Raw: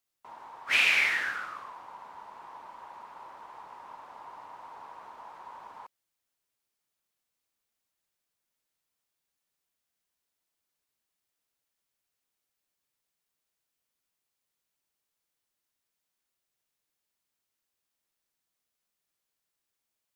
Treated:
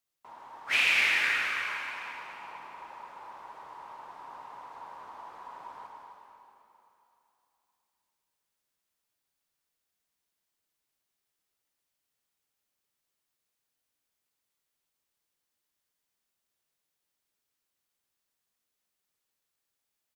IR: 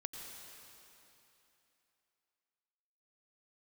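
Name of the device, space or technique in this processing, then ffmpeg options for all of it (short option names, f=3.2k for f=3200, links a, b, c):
cave: -filter_complex "[0:a]aecho=1:1:260:0.335[a];[1:a]atrim=start_sample=2205[b];[a][b]afir=irnorm=-1:irlink=0,volume=2dB"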